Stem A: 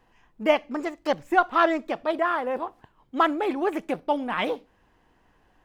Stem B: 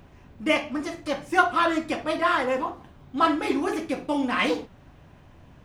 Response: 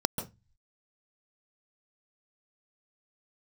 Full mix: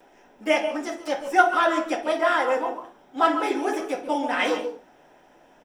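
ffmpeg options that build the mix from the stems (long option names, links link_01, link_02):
-filter_complex "[0:a]bass=frequency=250:gain=4,treble=frequency=4000:gain=13,acompressor=threshold=-25dB:ratio=6,volume=-9.5dB[link_01];[1:a]highpass=350,equalizer=frequency=4000:width=6.1:gain=-6.5,adelay=4.5,volume=-3.5dB,asplit=2[link_02][link_03];[link_03]volume=-5dB[link_04];[2:a]atrim=start_sample=2205[link_05];[link_04][link_05]afir=irnorm=-1:irlink=0[link_06];[link_01][link_02][link_06]amix=inputs=3:normalize=0,equalizer=frequency=130:width=0.55:gain=-11"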